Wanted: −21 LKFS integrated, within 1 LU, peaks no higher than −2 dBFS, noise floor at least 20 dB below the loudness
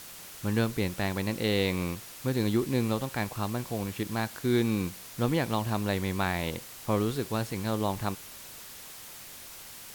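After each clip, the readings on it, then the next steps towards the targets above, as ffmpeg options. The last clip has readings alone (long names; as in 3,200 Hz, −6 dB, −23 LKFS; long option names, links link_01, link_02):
background noise floor −46 dBFS; target noise floor −51 dBFS; integrated loudness −30.5 LKFS; sample peak −15.0 dBFS; target loudness −21.0 LKFS
→ -af "afftdn=noise_reduction=6:noise_floor=-46"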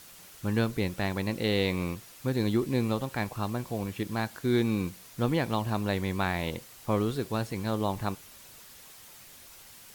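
background noise floor −51 dBFS; integrated loudness −30.5 LKFS; sample peak −15.0 dBFS; target loudness −21.0 LKFS
→ -af "volume=9.5dB"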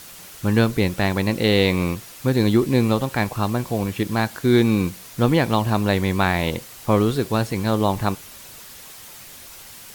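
integrated loudness −21.0 LKFS; sample peak −5.5 dBFS; background noise floor −42 dBFS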